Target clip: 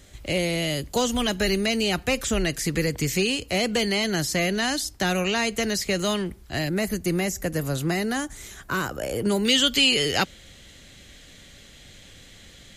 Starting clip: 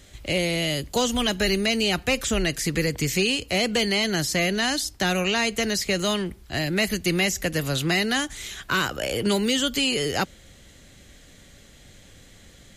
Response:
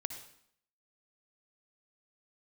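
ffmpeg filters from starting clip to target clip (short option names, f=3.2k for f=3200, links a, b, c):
-af "asetnsamples=n=441:p=0,asendcmd='6.69 equalizer g -11;9.45 equalizer g 6',equalizer=f=3.2k:w=0.82:g=-2.5"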